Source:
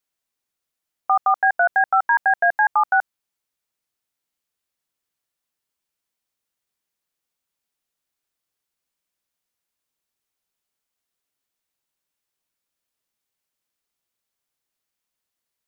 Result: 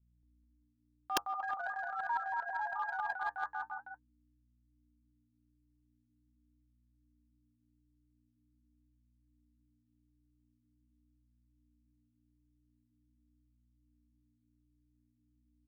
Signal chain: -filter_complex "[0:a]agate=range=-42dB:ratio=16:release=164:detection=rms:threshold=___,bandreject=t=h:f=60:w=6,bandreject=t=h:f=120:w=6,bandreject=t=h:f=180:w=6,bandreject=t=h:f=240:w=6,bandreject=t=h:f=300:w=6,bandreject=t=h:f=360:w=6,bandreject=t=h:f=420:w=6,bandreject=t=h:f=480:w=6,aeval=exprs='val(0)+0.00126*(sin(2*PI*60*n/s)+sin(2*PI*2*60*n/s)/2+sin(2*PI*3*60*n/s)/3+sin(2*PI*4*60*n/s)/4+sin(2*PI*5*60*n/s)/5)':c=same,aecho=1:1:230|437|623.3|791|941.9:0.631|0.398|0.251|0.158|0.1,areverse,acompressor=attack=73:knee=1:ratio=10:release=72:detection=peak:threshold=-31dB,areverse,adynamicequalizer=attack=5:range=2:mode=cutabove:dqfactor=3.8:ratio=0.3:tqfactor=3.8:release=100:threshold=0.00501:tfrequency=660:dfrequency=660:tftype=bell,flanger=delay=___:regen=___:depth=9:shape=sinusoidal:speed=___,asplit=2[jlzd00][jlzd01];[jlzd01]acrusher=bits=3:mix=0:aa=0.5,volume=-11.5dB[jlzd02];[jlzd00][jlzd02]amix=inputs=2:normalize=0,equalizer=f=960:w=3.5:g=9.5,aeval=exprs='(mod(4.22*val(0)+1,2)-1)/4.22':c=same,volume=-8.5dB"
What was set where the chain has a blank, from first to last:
-22dB, 1.6, -51, 0.44